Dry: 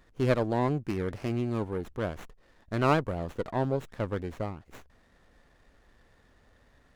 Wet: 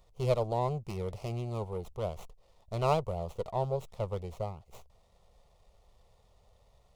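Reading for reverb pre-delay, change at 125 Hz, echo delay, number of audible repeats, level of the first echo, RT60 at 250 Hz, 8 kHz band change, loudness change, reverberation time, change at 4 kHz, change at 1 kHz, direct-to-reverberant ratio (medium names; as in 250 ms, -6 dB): no reverb, -2.5 dB, no echo, no echo, no echo, no reverb, no reading, -3.5 dB, no reverb, -3.0 dB, -2.0 dB, no reverb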